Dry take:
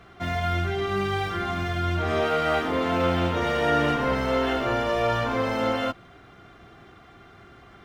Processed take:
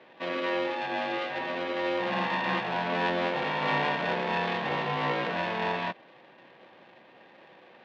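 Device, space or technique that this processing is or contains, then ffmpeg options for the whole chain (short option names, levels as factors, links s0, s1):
ring modulator pedal into a guitar cabinet: -af "aeval=exprs='val(0)*sgn(sin(2*PI*440*n/s))':c=same,highpass=f=150:w=0.5412,highpass=f=150:w=1.3066,highpass=83,equalizer=f=280:t=q:w=4:g=-6,equalizer=f=470:t=q:w=4:g=5,equalizer=f=1300:t=q:w=4:g=-6,lowpass=f=3600:w=0.5412,lowpass=f=3600:w=1.3066,volume=0.668"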